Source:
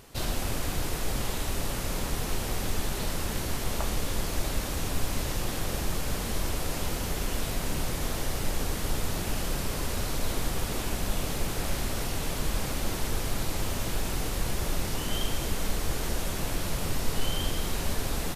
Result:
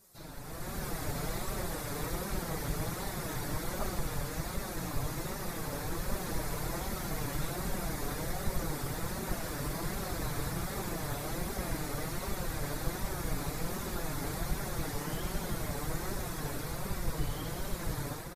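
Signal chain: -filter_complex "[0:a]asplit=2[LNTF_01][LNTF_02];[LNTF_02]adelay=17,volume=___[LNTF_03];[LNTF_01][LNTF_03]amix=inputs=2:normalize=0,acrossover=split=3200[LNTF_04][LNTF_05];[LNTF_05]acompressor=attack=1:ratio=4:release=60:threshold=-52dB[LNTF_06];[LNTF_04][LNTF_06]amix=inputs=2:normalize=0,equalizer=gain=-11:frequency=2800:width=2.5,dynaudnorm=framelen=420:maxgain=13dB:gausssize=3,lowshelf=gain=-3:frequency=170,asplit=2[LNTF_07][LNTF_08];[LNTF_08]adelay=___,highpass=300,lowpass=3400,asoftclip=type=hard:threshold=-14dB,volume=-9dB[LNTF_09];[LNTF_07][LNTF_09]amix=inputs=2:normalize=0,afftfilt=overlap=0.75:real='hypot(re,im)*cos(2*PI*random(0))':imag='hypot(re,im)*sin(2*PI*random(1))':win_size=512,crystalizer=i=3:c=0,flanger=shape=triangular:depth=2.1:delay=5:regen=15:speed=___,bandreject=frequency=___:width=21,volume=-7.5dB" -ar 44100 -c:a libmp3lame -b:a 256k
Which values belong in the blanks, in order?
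-4dB, 310, 1.3, 3100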